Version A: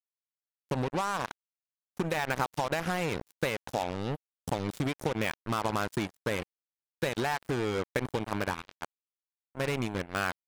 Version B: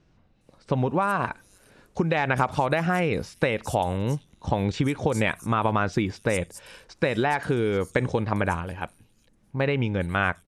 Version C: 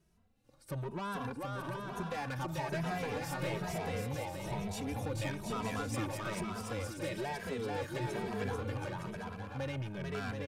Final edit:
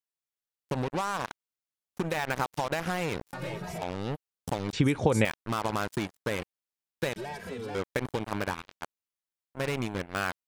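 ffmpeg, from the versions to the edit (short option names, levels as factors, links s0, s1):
-filter_complex "[2:a]asplit=2[s0][s1];[0:a]asplit=4[s2][s3][s4][s5];[s2]atrim=end=3.332[s6];[s0]atrim=start=3.328:end=3.822[s7];[s3]atrim=start=3.818:end=4.732[s8];[1:a]atrim=start=4.728:end=5.252[s9];[s4]atrim=start=5.248:end=7.162[s10];[s1]atrim=start=7.158:end=7.752[s11];[s5]atrim=start=7.748[s12];[s6][s7]acrossfade=d=0.004:c1=hsin:c2=hsin[s13];[s13][s8]acrossfade=d=0.004:c1=hsin:c2=hsin[s14];[s14][s9]acrossfade=d=0.004:c1=hsin:c2=hsin[s15];[s15][s10]acrossfade=d=0.004:c1=hsin:c2=hsin[s16];[s16][s11]acrossfade=d=0.004:c1=hsin:c2=hsin[s17];[s17][s12]acrossfade=d=0.004:c1=hsin:c2=hsin"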